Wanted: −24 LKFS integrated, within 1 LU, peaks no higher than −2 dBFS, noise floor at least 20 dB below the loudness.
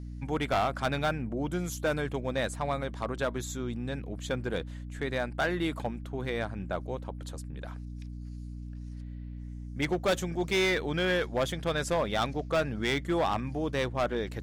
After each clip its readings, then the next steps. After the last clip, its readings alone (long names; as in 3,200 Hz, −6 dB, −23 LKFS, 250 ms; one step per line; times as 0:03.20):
share of clipped samples 1.7%; peaks flattened at −22.0 dBFS; mains hum 60 Hz; hum harmonics up to 300 Hz; level of the hum −38 dBFS; integrated loudness −31.5 LKFS; sample peak −22.0 dBFS; target loudness −24.0 LKFS
→ clipped peaks rebuilt −22 dBFS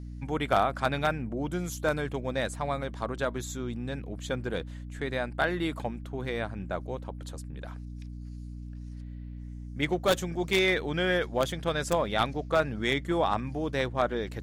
share of clipped samples 0.0%; mains hum 60 Hz; hum harmonics up to 300 Hz; level of the hum −38 dBFS
→ mains-hum notches 60/120/180/240/300 Hz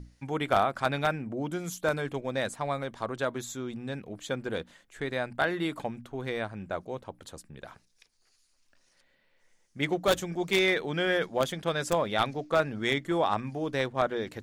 mains hum none found; integrated loudness −30.5 LKFS; sample peak −12.0 dBFS; target loudness −24.0 LKFS
→ level +6.5 dB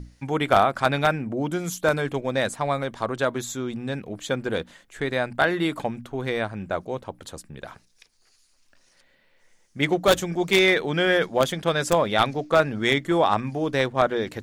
integrated loudness −24.0 LKFS; sample peak −5.5 dBFS; background noise floor −62 dBFS